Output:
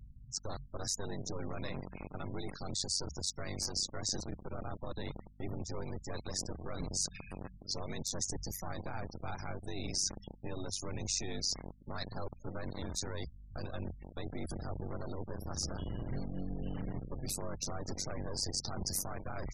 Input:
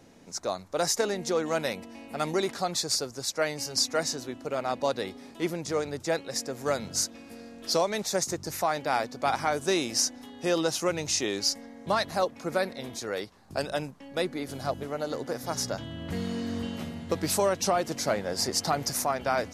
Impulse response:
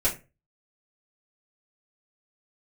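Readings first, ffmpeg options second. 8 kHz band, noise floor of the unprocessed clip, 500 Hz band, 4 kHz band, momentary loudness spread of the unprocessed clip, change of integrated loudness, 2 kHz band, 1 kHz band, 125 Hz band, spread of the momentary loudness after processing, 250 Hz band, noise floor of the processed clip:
-7.0 dB, -48 dBFS, -16.0 dB, -8.0 dB, 8 LU, -10.0 dB, -15.0 dB, -16.5 dB, -2.0 dB, 9 LU, -9.5 dB, -55 dBFS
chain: -filter_complex "[0:a]aeval=exprs='val(0)*sin(2*PI*48*n/s)':c=same,acrossover=split=110|1200[a][b][c];[b]acrusher=bits=4:dc=4:mix=0:aa=0.000001[d];[a][d][c]amix=inputs=3:normalize=0,lowshelf=f=360:g=11,bandreject=f=3.1k:w=12,areverse,acompressor=threshold=-39dB:ratio=6,areverse,alimiter=level_in=12dB:limit=-24dB:level=0:latency=1:release=43,volume=-12dB,acontrast=22,asplit=2[e][f];[f]adelay=172,lowpass=f=1.4k:p=1,volume=-21dB,asplit=2[g][h];[h]adelay=172,lowpass=f=1.4k:p=1,volume=0.26[i];[e][g][i]amix=inputs=3:normalize=0,acrusher=bits=9:mode=log:mix=0:aa=0.000001,afftfilt=real='re*gte(hypot(re,im),0.00447)':imag='im*gte(hypot(re,im),0.00447)':win_size=1024:overlap=0.75,aeval=exprs='val(0)+0.000708*(sin(2*PI*50*n/s)+sin(2*PI*2*50*n/s)/2+sin(2*PI*3*50*n/s)/3+sin(2*PI*4*50*n/s)/4+sin(2*PI*5*50*n/s)/5)':c=same,adynamicequalizer=threshold=0.00158:dfrequency=3400:dqfactor=0.7:tfrequency=3400:tqfactor=0.7:attack=5:release=100:ratio=0.375:range=3:mode=boostabove:tftype=highshelf,volume=3dB"

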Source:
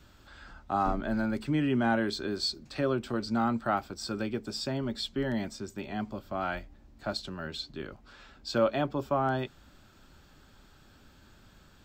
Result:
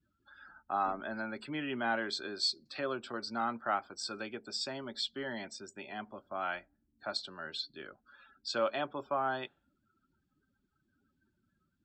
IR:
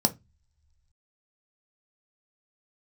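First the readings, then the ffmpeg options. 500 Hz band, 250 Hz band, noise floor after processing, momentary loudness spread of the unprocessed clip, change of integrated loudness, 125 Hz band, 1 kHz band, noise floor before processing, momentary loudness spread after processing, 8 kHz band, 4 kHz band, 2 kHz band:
-6.5 dB, -11.5 dB, -80 dBFS, 12 LU, -5.0 dB, -17.0 dB, -3.0 dB, -58 dBFS, 11 LU, -1.5 dB, -0.5 dB, -1.5 dB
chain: -af "afftdn=nr=31:nf=-51,highpass=f=950:p=1"

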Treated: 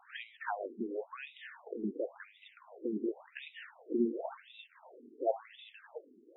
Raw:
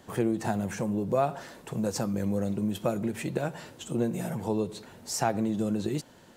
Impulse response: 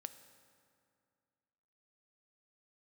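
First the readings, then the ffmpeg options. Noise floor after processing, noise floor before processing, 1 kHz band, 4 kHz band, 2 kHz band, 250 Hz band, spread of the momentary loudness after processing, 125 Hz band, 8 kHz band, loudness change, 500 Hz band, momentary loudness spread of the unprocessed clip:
-64 dBFS, -54 dBFS, -10.0 dB, -10.5 dB, -5.0 dB, -10.5 dB, 19 LU, under -20 dB, under -40 dB, -8.5 dB, -8.0 dB, 8 LU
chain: -af "bass=f=250:g=-1,treble=f=4k:g=12,afftfilt=real='re*between(b*sr/1024,300*pow(2800/300,0.5+0.5*sin(2*PI*0.93*pts/sr))/1.41,300*pow(2800/300,0.5+0.5*sin(2*PI*0.93*pts/sr))*1.41)':imag='im*between(b*sr/1024,300*pow(2800/300,0.5+0.5*sin(2*PI*0.93*pts/sr))/1.41,300*pow(2800/300,0.5+0.5*sin(2*PI*0.93*pts/sr))*1.41)':win_size=1024:overlap=0.75,volume=1dB"

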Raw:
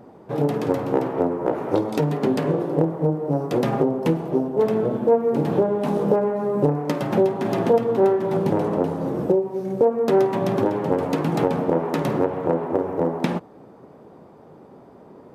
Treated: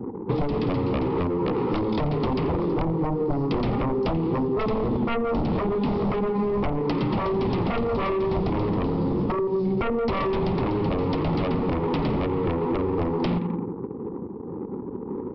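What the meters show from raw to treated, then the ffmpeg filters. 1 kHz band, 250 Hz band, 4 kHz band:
-2.0 dB, -1.5 dB, n/a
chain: -filter_complex "[0:a]asuperstop=centerf=640:order=4:qfactor=1.8,asplit=2[a][b];[b]adelay=86,lowpass=f=2.8k:p=1,volume=-12dB,asplit=2[c][d];[d]adelay=86,lowpass=f=2.8k:p=1,volume=0.52,asplit=2[e][f];[f]adelay=86,lowpass=f=2.8k:p=1,volume=0.52,asplit=2[g][h];[h]adelay=86,lowpass=f=2.8k:p=1,volume=0.52,asplit=2[i][j];[j]adelay=86,lowpass=f=2.8k:p=1,volume=0.52[k];[a][c][e][g][i][k]amix=inputs=6:normalize=0,aresample=11025,aeval=exprs='0.473*sin(PI/2*5.01*val(0)/0.473)':c=same,aresample=44100,equalizer=f=1.6k:w=3.7:g=-13,anlmdn=100,acrossover=split=160|3800[l][m][n];[m]acompressor=threshold=-18dB:ratio=4[o];[n]acompressor=threshold=-42dB:ratio=4[p];[l][o][p]amix=inputs=3:normalize=0,equalizer=f=150:w=6.3:g=-6.5,acompressor=threshold=-19dB:ratio=6,volume=-2dB"

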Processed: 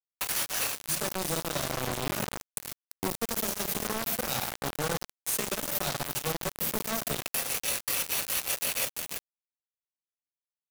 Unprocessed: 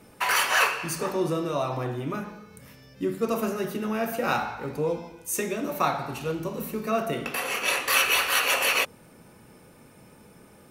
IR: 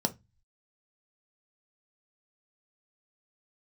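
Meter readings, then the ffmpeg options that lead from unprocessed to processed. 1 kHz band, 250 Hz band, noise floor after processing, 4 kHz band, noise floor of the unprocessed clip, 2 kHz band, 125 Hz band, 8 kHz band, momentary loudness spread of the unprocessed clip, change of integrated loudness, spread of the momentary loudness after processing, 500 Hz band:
-8.5 dB, -7.0 dB, under -85 dBFS, -4.5 dB, -53 dBFS, -10.0 dB, -3.5 dB, +1.5 dB, 11 LU, -4.5 dB, 7 LU, -7.5 dB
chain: -filter_complex "[0:a]firequalizer=gain_entry='entry(420,0);entry(630,10);entry(970,-5)':delay=0.05:min_phase=1,crystalizer=i=10:c=0,asplit=2[a][b];[b]lowshelf=f=140:g=11.5[c];[1:a]atrim=start_sample=2205,asetrate=28665,aresample=44100,highshelf=f=2k:g=-8.5[d];[c][d]afir=irnorm=-1:irlink=0,volume=-19.5dB[e];[a][e]amix=inputs=2:normalize=0,acrossover=split=83|250|3700[f][g][h][i];[f]acompressor=threshold=-54dB:ratio=4[j];[g]acompressor=threshold=-29dB:ratio=4[k];[h]acompressor=threshold=-27dB:ratio=4[l];[i]acompressor=threshold=-21dB:ratio=4[m];[j][k][l][m]amix=inputs=4:normalize=0,aecho=1:1:342:0.211,areverse,acompressor=threshold=-33dB:ratio=4,areverse,acrusher=bits=4:mix=0:aa=0.000001,volume=2.5dB"

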